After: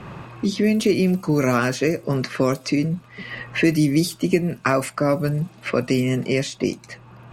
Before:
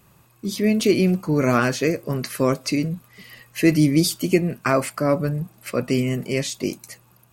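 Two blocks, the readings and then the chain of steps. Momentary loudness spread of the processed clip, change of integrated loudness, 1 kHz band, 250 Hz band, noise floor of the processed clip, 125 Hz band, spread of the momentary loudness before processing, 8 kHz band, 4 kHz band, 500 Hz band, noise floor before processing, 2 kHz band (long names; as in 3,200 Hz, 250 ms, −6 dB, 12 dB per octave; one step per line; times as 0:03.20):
10 LU, 0.0 dB, 0.0 dB, +0.5 dB, −47 dBFS, +0.5 dB, 11 LU, −3.0 dB, −1.0 dB, +0.5 dB, −56 dBFS, +1.5 dB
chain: low-pass that shuts in the quiet parts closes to 2,400 Hz, open at −16 dBFS
multiband upward and downward compressor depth 70%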